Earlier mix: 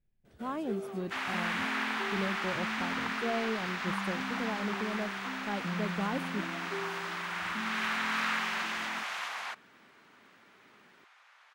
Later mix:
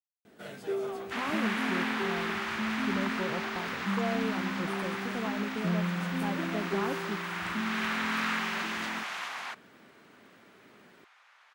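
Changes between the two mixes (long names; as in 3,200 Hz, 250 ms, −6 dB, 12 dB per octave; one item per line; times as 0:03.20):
speech: entry +0.75 s
first sound +6.5 dB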